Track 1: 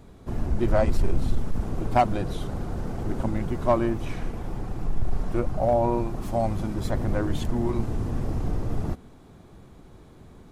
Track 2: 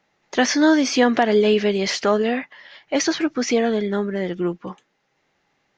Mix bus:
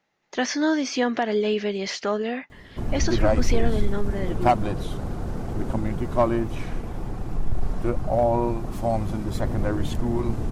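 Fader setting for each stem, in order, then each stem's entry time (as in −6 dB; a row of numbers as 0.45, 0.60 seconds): +1.0, −6.5 decibels; 2.50, 0.00 seconds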